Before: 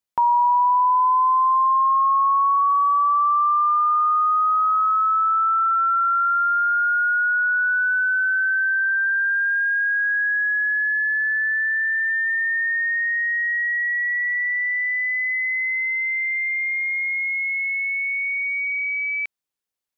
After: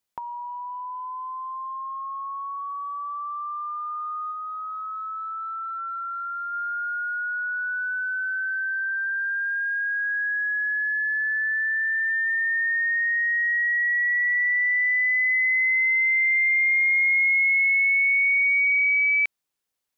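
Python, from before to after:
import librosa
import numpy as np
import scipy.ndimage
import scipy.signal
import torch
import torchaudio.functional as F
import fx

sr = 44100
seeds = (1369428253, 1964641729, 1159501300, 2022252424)

y = fx.over_compress(x, sr, threshold_db=-24.0, ratio=-0.5)
y = fx.low_shelf_res(y, sr, hz=690.0, db=10.5, q=1.5, at=(4.31, 6.52), fade=0.02)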